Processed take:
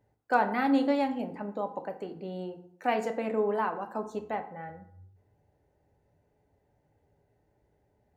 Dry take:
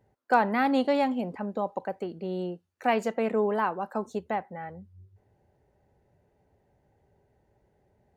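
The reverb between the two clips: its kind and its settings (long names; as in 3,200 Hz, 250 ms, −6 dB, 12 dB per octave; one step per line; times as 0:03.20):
feedback delay network reverb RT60 0.65 s, low-frequency decay 1.1×, high-frequency decay 0.6×, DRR 6 dB
level −4 dB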